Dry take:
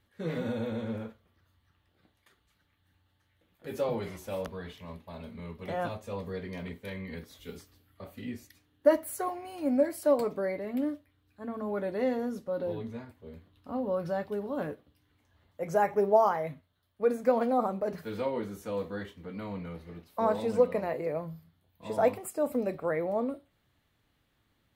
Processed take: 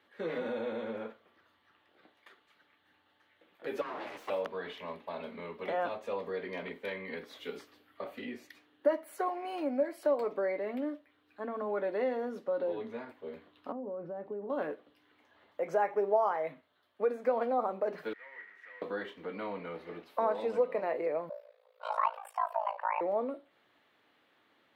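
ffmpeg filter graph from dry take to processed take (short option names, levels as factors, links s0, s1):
-filter_complex "[0:a]asettb=1/sr,asplit=3[s0][s1][s2];[s0]atrim=end=3.814[s3];[s1]atrim=start=3.81:end=4.3,asetpts=PTS-STARTPTS,afade=t=in:d=0.004:c=qsin,afade=t=out:st=0.486:d=0.004:c=qsin,acompressor=threshold=0.0224:ratio=6:attack=3.2:release=140:knee=1:detection=peak,aeval=exprs='abs(val(0))':c=same,afreqshift=25[s4];[s2]atrim=start=4.296[s5];[s3][s4]acrossfade=d=0.004:c1=hsin:c2=qsin[s6];[s6][s5]acrossfade=d=0.004:c1=qsin:c2=hsin,asettb=1/sr,asplit=3[s7][s8][s9];[s7]atrim=end=13.724[s10];[s8]atrim=start=13.72:end=14.5,asetpts=PTS-STARTPTS,afade=t=in:d=0.004:c=qsin,afade=t=out:st=0.776:d=0.004:c=qsin,acompressor=threshold=0.0178:ratio=5:attack=3.2:release=140:knee=1:detection=peak,bandpass=f=200:t=q:w=0.71[s11];[s9]atrim=start=14.496[s12];[s10][s11]acrossfade=d=0.004:c1=hsin:c2=qsin[s13];[s13][s12]acrossfade=d=0.004:c1=qsin:c2=hsin,asettb=1/sr,asplit=3[s14][s15][s16];[s14]atrim=end=18.134[s17];[s15]atrim=start=18.13:end=18.82,asetpts=PTS-STARTPTS,afade=t=in:d=0.004:c=qsin,afade=t=out:st=0.686:d=0.004:c=qsin,aeval=exprs='val(0)+0.5*0.0168*sgn(val(0))':c=same,bandpass=f=1900:t=q:w=19[s18];[s16]atrim=start=18.816[s19];[s17][s18]acrossfade=d=0.004:c1=hsin:c2=qsin[s20];[s20][s19]acrossfade=d=0.004:c1=qsin:c2=hsin,asettb=1/sr,asplit=3[s21][s22][s23];[s21]atrim=end=21.294[s24];[s22]atrim=start=21.29:end=23.01,asetpts=PTS-STARTPTS,afade=t=in:d=0.004:c=qsin,afade=t=out:st=1.716:d=0.004:c=qsin,highshelf=f=11000:g=-3.5,afreqshift=420,tremolo=f=55:d=0.919[s25];[s23]atrim=start=23.006[s26];[s24][s25]acrossfade=d=0.004:c1=hsin:c2=qsin[s27];[s27][s26]acrossfade=d=0.004:c1=qsin:c2=hsin,acompressor=threshold=0.00708:ratio=2,highpass=88,acrossover=split=280 3800:gain=0.0631 1 0.158[s28][s29][s30];[s28][s29][s30]amix=inputs=3:normalize=0,volume=2.66"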